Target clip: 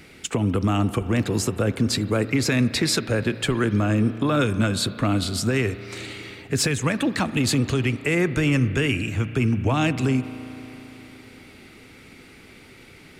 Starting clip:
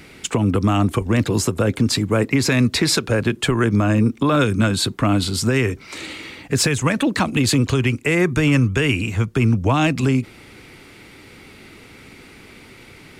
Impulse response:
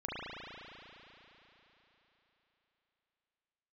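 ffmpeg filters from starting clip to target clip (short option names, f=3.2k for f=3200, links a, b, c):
-filter_complex "[0:a]equalizer=f=1k:t=o:w=0.28:g=-4,asplit=2[a][b];[1:a]atrim=start_sample=2205,adelay=12[c];[b][c]afir=irnorm=-1:irlink=0,volume=-18dB[d];[a][d]amix=inputs=2:normalize=0,volume=-4dB"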